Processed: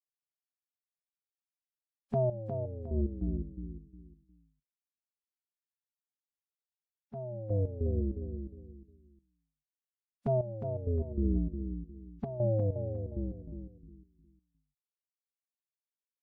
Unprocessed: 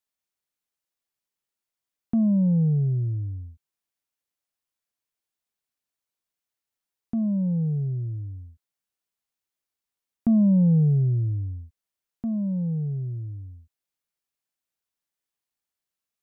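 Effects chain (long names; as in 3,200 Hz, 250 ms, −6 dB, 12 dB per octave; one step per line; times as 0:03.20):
noise reduction from a noise print of the clip's start 26 dB
brickwall limiter −24 dBFS, peak gain reduction 9 dB
phase-vocoder pitch shift with formants kept −9 semitones
gate pattern "....x.xx...x.xx" 98 BPM −12 dB
repeating echo 358 ms, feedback 27%, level −8 dB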